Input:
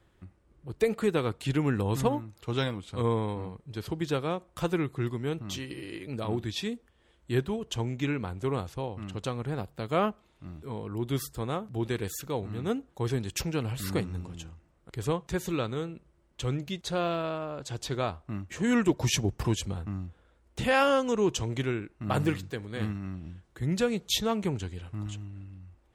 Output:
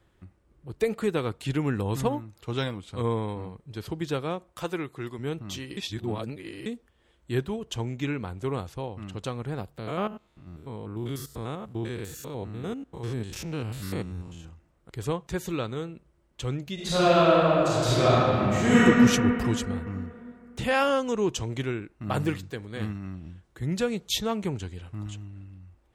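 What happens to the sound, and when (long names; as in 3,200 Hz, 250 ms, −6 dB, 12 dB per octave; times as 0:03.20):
0:04.52–0:05.19: low-shelf EQ 210 Hz −11 dB
0:05.77–0:06.66: reverse
0:09.78–0:14.45: spectrum averaged block by block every 100 ms
0:16.74–0:18.80: thrown reverb, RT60 2.8 s, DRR −11 dB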